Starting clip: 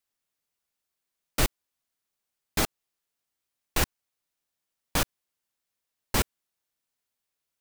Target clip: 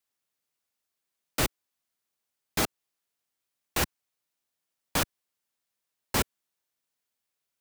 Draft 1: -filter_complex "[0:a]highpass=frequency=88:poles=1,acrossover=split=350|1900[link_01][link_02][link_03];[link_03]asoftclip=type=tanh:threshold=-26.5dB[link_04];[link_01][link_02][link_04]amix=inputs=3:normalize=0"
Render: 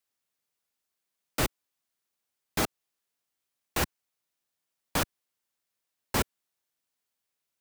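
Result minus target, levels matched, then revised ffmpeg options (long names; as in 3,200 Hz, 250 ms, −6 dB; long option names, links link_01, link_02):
soft clipping: distortion +10 dB
-filter_complex "[0:a]highpass=frequency=88:poles=1,acrossover=split=350|1900[link_01][link_02][link_03];[link_03]asoftclip=type=tanh:threshold=-18.5dB[link_04];[link_01][link_02][link_04]amix=inputs=3:normalize=0"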